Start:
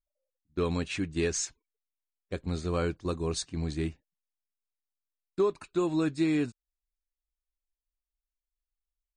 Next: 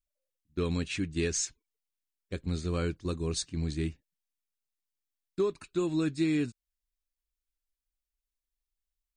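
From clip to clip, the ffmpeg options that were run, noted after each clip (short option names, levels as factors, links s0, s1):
-af "equalizer=f=800:t=o:w=1.6:g=-9,volume=1.12"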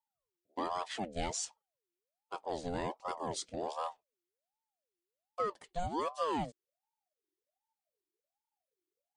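-af "aeval=exprs='val(0)*sin(2*PI*620*n/s+620*0.45/1.3*sin(2*PI*1.3*n/s))':c=same,volume=0.668"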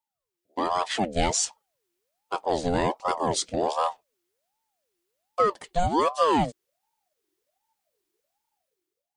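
-af "dynaudnorm=f=170:g=7:m=3.16,volume=1.33"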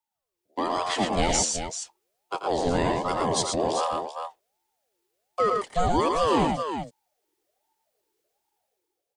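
-filter_complex "[0:a]aecho=1:1:86|114|386:0.266|0.596|0.355,acrossover=split=170|600|1600[s0][s1][s2][s3];[s2]alimiter=limit=0.075:level=0:latency=1[s4];[s0][s1][s4][s3]amix=inputs=4:normalize=0"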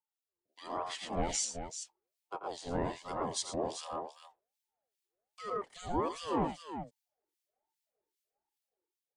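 -filter_complex "[0:a]acrossover=split=1900[s0][s1];[s0]aeval=exprs='val(0)*(1-1/2+1/2*cos(2*PI*2.5*n/s))':c=same[s2];[s1]aeval=exprs='val(0)*(1-1/2-1/2*cos(2*PI*2.5*n/s))':c=same[s3];[s2][s3]amix=inputs=2:normalize=0,volume=0.398"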